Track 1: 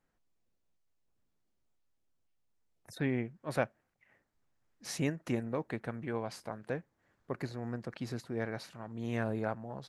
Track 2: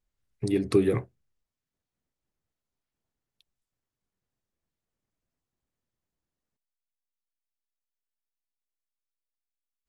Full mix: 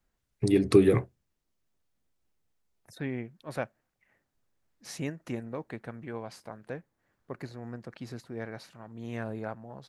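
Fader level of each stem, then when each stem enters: -2.0 dB, +2.5 dB; 0.00 s, 0.00 s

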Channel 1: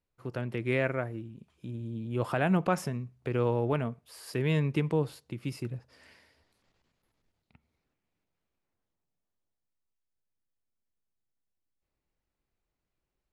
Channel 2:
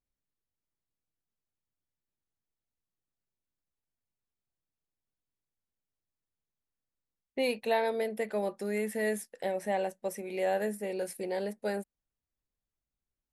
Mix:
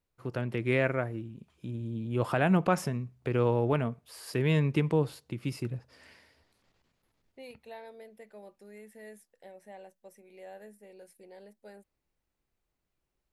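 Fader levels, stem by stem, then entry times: +1.5 dB, -17.5 dB; 0.00 s, 0.00 s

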